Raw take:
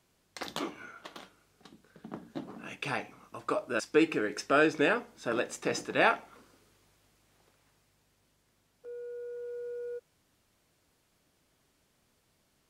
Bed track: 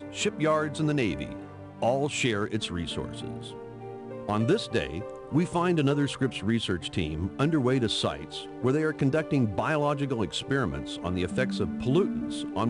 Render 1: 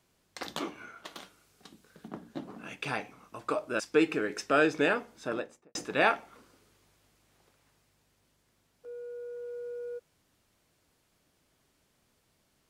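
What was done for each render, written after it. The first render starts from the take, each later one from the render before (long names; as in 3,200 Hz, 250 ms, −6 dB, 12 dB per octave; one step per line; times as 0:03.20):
0:01.05–0:02.08: high-shelf EQ 3,400 Hz +6.5 dB
0:05.16–0:05.75: fade out and dull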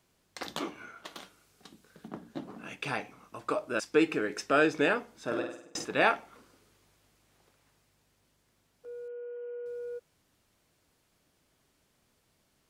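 0:05.23–0:05.85: flutter between parallel walls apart 8.6 metres, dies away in 0.6 s
0:09.08–0:09.66: linear-phase brick-wall band-pass 220–3,200 Hz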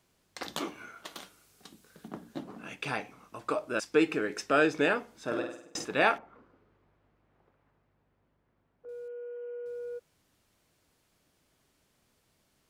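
0:00.53–0:02.43: high-shelf EQ 6,800 Hz +6.5 dB
0:06.18–0:08.89: low-pass filter 1,500 Hz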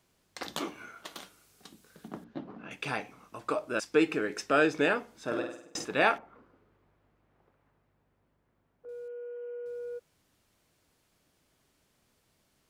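0:02.24–0:02.71: high-frequency loss of the air 250 metres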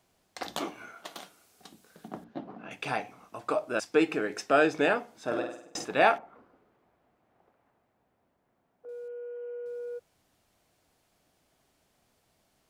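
parametric band 720 Hz +7 dB 0.5 octaves
mains-hum notches 50/100/150 Hz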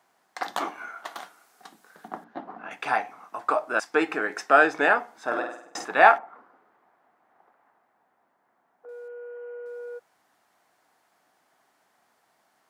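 high-pass filter 230 Hz 12 dB per octave
flat-topped bell 1,200 Hz +9 dB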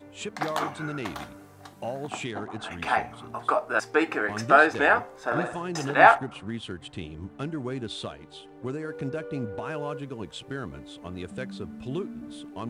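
mix in bed track −8 dB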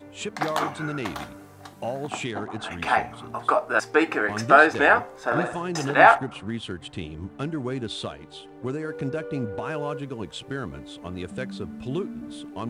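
level +3 dB
brickwall limiter −3 dBFS, peak gain reduction 3 dB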